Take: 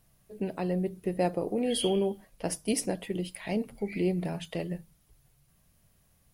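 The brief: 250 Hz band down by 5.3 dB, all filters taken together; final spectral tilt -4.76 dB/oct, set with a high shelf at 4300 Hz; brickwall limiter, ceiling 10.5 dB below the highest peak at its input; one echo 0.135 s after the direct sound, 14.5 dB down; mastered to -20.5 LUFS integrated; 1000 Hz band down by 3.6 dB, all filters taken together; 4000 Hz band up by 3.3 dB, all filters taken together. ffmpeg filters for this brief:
-af "equalizer=f=250:t=o:g=-8,equalizer=f=1k:t=o:g=-5,equalizer=f=4k:t=o:g=9,highshelf=f=4.3k:g=-7.5,alimiter=level_in=3dB:limit=-24dB:level=0:latency=1,volume=-3dB,aecho=1:1:135:0.188,volume=17dB"

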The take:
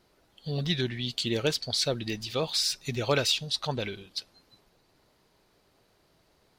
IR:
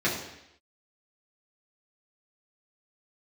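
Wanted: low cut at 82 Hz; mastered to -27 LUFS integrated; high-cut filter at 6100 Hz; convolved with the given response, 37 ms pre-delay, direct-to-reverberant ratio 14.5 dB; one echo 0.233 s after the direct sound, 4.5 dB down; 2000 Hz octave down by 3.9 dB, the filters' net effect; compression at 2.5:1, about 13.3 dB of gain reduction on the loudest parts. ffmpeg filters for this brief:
-filter_complex "[0:a]highpass=82,lowpass=6.1k,equalizer=f=2k:t=o:g=-5.5,acompressor=threshold=-42dB:ratio=2.5,aecho=1:1:233:0.596,asplit=2[a][b];[1:a]atrim=start_sample=2205,adelay=37[c];[b][c]afir=irnorm=-1:irlink=0,volume=-27dB[d];[a][d]amix=inputs=2:normalize=0,volume=12.5dB"

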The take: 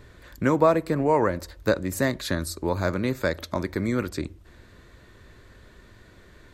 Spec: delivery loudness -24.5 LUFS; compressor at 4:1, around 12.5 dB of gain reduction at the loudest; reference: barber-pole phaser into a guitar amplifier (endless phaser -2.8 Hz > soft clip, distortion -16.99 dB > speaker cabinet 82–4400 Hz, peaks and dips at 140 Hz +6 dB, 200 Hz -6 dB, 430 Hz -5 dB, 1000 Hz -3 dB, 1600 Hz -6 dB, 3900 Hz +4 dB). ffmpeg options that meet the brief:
-filter_complex "[0:a]acompressor=threshold=-29dB:ratio=4,asplit=2[a][b];[b]afreqshift=-2.8[c];[a][c]amix=inputs=2:normalize=1,asoftclip=threshold=-27dB,highpass=82,equalizer=f=140:t=q:w=4:g=6,equalizer=f=200:t=q:w=4:g=-6,equalizer=f=430:t=q:w=4:g=-5,equalizer=f=1k:t=q:w=4:g=-3,equalizer=f=1.6k:t=q:w=4:g=-6,equalizer=f=3.9k:t=q:w=4:g=4,lowpass=f=4.4k:w=0.5412,lowpass=f=4.4k:w=1.3066,volume=15.5dB"

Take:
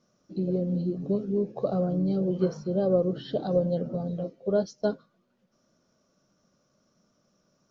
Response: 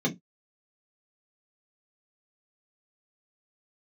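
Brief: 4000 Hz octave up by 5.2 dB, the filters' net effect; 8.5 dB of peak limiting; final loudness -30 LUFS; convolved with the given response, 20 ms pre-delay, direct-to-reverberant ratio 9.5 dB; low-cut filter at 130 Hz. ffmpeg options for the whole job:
-filter_complex "[0:a]highpass=130,equalizer=f=4k:t=o:g=6.5,alimiter=limit=-21dB:level=0:latency=1,asplit=2[a][b];[1:a]atrim=start_sample=2205,adelay=20[c];[b][c]afir=irnorm=-1:irlink=0,volume=-18.5dB[d];[a][d]amix=inputs=2:normalize=0,volume=-2dB"

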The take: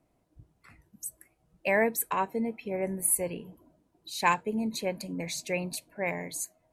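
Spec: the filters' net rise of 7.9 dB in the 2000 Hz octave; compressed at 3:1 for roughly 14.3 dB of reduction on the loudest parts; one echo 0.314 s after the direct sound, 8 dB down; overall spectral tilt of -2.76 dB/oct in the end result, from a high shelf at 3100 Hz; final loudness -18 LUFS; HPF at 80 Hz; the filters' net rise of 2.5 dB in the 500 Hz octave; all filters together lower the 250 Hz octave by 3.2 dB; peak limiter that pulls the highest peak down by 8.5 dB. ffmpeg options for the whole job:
-af "highpass=80,equalizer=f=250:t=o:g=-5,equalizer=f=500:t=o:g=3.5,equalizer=f=2k:t=o:g=6,highshelf=f=3.1k:g=9,acompressor=threshold=-34dB:ratio=3,alimiter=level_in=2.5dB:limit=-24dB:level=0:latency=1,volume=-2.5dB,aecho=1:1:314:0.398,volume=19.5dB"

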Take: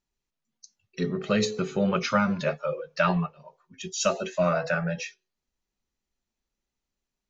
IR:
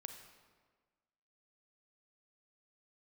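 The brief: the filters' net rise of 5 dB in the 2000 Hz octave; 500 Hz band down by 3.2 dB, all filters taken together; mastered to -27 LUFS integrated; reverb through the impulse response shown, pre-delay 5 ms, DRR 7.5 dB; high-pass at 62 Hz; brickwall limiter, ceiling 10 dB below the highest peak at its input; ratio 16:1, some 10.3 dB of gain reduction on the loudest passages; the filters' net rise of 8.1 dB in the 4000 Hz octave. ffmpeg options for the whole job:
-filter_complex "[0:a]highpass=62,equalizer=f=500:t=o:g=-4.5,equalizer=f=2k:t=o:g=5.5,equalizer=f=4k:t=o:g=8.5,acompressor=threshold=-27dB:ratio=16,alimiter=limit=-23dB:level=0:latency=1,asplit=2[a][b];[1:a]atrim=start_sample=2205,adelay=5[c];[b][c]afir=irnorm=-1:irlink=0,volume=-3.5dB[d];[a][d]amix=inputs=2:normalize=0,volume=6dB"

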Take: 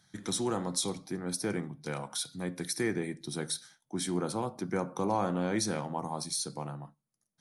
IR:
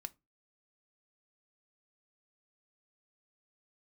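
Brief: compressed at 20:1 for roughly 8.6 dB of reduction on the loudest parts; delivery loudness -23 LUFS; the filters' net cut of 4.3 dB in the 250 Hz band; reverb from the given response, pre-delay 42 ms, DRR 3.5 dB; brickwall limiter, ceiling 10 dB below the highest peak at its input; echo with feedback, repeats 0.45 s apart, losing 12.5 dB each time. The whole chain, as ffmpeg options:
-filter_complex "[0:a]equalizer=f=250:t=o:g=-6.5,acompressor=threshold=-34dB:ratio=20,alimiter=level_in=8.5dB:limit=-24dB:level=0:latency=1,volume=-8.5dB,aecho=1:1:450|900|1350:0.237|0.0569|0.0137,asplit=2[a][b];[1:a]atrim=start_sample=2205,adelay=42[c];[b][c]afir=irnorm=-1:irlink=0,volume=0.5dB[d];[a][d]amix=inputs=2:normalize=0,volume=19dB"

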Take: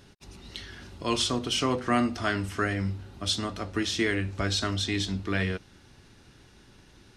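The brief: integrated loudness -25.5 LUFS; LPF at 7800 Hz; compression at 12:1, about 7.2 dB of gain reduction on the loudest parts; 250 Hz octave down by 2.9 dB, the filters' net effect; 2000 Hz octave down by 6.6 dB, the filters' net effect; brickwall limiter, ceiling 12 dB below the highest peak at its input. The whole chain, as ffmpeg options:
-af "lowpass=7.8k,equalizer=f=250:t=o:g=-3.5,equalizer=f=2k:t=o:g=-8.5,acompressor=threshold=-30dB:ratio=12,volume=15.5dB,alimiter=limit=-16dB:level=0:latency=1"

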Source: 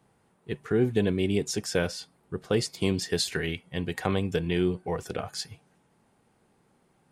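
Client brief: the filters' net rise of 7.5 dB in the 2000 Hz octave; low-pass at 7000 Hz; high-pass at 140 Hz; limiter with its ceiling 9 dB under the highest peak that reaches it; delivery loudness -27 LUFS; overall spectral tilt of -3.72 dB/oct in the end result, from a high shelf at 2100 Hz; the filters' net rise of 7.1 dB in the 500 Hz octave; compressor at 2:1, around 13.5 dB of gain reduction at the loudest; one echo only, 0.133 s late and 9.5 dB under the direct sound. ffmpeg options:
-af "highpass=140,lowpass=7k,equalizer=f=500:t=o:g=8.5,equalizer=f=2k:t=o:g=6,highshelf=f=2.1k:g=5.5,acompressor=threshold=-40dB:ratio=2,alimiter=level_in=1.5dB:limit=-24dB:level=0:latency=1,volume=-1.5dB,aecho=1:1:133:0.335,volume=10.5dB"

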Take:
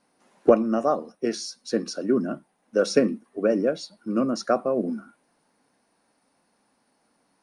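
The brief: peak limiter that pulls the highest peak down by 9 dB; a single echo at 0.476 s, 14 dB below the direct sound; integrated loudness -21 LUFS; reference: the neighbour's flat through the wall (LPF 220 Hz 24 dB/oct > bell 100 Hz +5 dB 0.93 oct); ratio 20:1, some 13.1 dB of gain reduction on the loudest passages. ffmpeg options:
-af "acompressor=threshold=-23dB:ratio=20,alimiter=limit=-21.5dB:level=0:latency=1,lowpass=f=220:w=0.5412,lowpass=f=220:w=1.3066,equalizer=f=100:t=o:w=0.93:g=5,aecho=1:1:476:0.2,volume=19.5dB"

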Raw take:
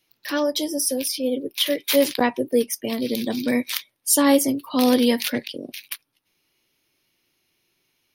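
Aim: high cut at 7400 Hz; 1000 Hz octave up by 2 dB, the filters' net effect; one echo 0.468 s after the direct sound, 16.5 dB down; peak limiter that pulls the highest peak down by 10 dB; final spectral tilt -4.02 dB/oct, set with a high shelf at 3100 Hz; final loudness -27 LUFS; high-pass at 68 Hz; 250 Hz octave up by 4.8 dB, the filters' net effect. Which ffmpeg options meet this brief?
-af "highpass=68,lowpass=7.4k,equalizer=f=250:t=o:g=5,equalizer=f=1k:t=o:g=3,highshelf=f=3.1k:g=-7,alimiter=limit=-13dB:level=0:latency=1,aecho=1:1:468:0.15,volume=-3.5dB"

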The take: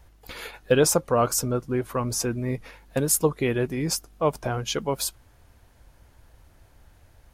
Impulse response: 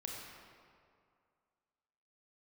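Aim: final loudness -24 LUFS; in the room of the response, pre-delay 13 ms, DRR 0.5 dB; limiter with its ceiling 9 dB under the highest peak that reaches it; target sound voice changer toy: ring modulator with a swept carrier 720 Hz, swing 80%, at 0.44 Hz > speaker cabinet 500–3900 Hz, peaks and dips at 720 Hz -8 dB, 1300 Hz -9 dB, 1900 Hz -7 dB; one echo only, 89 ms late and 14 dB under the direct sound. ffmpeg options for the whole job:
-filter_complex "[0:a]alimiter=limit=-16.5dB:level=0:latency=1,aecho=1:1:89:0.2,asplit=2[a][b];[1:a]atrim=start_sample=2205,adelay=13[c];[b][c]afir=irnorm=-1:irlink=0,volume=0.5dB[d];[a][d]amix=inputs=2:normalize=0,aeval=exprs='val(0)*sin(2*PI*720*n/s+720*0.8/0.44*sin(2*PI*0.44*n/s))':c=same,highpass=500,equalizer=f=720:t=q:w=4:g=-8,equalizer=f=1.3k:t=q:w=4:g=-9,equalizer=f=1.9k:t=q:w=4:g=-7,lowpass=f=3.9k:w=0.5412,lowpass=f=3.9k:w=1.3066,volume=11dB"

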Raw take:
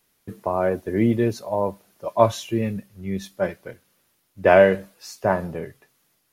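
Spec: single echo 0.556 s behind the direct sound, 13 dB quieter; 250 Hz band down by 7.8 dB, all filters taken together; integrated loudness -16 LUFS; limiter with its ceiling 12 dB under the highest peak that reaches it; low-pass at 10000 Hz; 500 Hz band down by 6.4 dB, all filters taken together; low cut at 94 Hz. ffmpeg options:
-af "highpass=94,lowpass=10k,equalizer=f=250:t=o:g=-8.5,equalizer=f=500:t=o:g=-6.5,alimiter=limit=-16.5dB:level=0:latency=1,aecho=1:1:556:0.224,volume=15dB"

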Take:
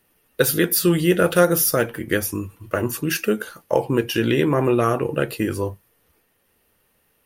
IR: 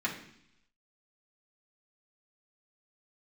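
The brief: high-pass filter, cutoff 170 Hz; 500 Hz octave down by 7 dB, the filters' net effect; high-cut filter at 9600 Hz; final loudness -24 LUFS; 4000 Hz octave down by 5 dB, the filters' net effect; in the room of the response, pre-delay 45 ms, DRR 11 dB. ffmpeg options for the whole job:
-filter_complex "[0:a]highpass=170,lowpass=9.6k,equalizer=f=500:t=o:g=-9,equalizer=f=4k:t=o:g=-7,asplit=2[a][b];[1:a]atrim=start_sample=2205,adelay=45[c];[b][c]afir=irnorm=-1:irlink=0,volume=-18dB[d];[a][d]amix=inputs=2:normalize=0,volume=1.5dB"

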